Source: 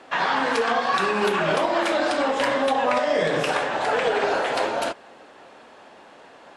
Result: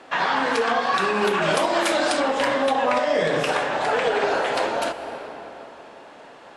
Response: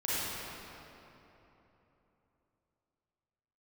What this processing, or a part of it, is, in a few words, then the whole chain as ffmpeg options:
ducked reverb: -filter_complex "[0:a]asettb=1/sr,asplit=3[a][b][c];[a]atrim=end=1.424[d];[b]atrim=start=1.42:end=2.2,asetpts=PTS-STARTPTS,afade=t=in:d=0.004:c=qsin,afade=t=out:st=0.776:d=0.004:c=qsin,aemphasis=mode=production:type=50kf[e];[c]atrim=start=2.196[f];[d][e]acrossfade=d=0.004:c1=hsin:c2=qsin[g];[g][f]acrossfade=d=0.004:c1=qsin:c2=hsin,asplit=3[h][i][j];[1:a]atrim=start_sample=2205[k];[i][k]afir=irnorm=-1:irlink=0[l];[j]apad=whole_len=289534[m];[l][m]sidechaincompress=threshold=-27dB:ratio=8:attack=10:release=375,volume=-14dB[n];[h][n]amix=inputs=2:normalize=0"

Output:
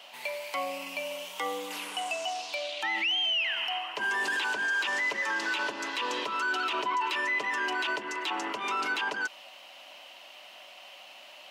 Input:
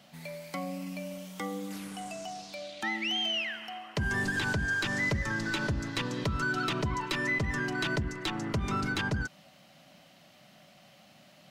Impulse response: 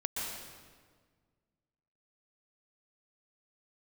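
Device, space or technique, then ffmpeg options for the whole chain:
laptop speaker: -af "highpass=f=380:w=0.5412,highpass=f=380:w=1.3066,equalizer=f=960:t=o:w=0.36:g=10,equalizer=f=2.8k:t=o:w=0.58:g=11,alimiter=level_in=3dB:limit=-24dB:level=0:latency=1:release=20,volume=-3dB,volume=4.5dB"

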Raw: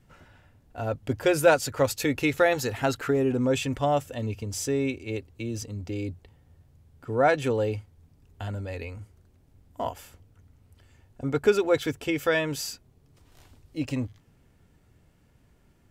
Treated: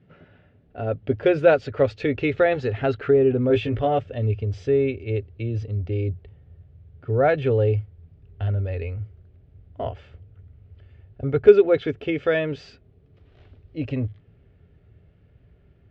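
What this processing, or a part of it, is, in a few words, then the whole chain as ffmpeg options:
guitar cabinet: -filter_complex "[0:a]highpass=78,equalizer=f=110:t=q:w=4:g=5,equalizer=f=170:t=q:w=4:g=9,equalizer=f=250:t=q:w=4:g=4,equalizer=f=410:t=q:w=4:g=10,equalizer=f=610:t=q:w=4:g=5,equalizer=f=960:t=q:w=4:g=-9,lowpass=f=3.4k:w=0.5412,lowpass=f=3.4k:w=1.3066,asubboost=boost=11.5:cutoff=62,asettb=1/sr,asplit=3[a][b][c];[a]atrim=end=3.484[d];[b]atrim=start=3.48:end=3.99,asetpts=PTS-STARTPTS,afade=t=in:d=0.004:c=qsin,afade=t=out:st=0.506:d=0.004:c=qsin,asplit=2[e][f];[f]adelay=18,volume=-3.5dB[g];[e][g]amix=inputs=2:normalize=0,atrim=end_sample=22491[h];[c]atrim=start=3.986[i];[d][h]acrossfade=d=0.004:c1=hsin:c2=qsin[j];[j][i]acrossfade=d=0.004:c1=qsin:c2=hsin"

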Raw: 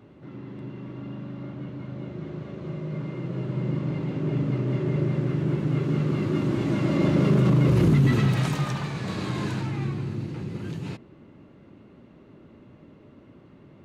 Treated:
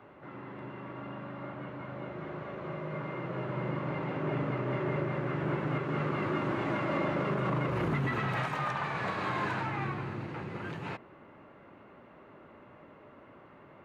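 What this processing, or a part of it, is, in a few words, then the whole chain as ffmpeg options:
DJ mixer with the lows and highs turned down: -filter_complex "[0:a]acrossover=split=590 2300:gain=0.141 1 0.112[a][b][c];[a][b][c]amix=inputs=3:normalize=0,alimiter=level_in=6dB:limit=-24dB:level=0:latency=1:release=317,volume=-6dB,volume=8dB"

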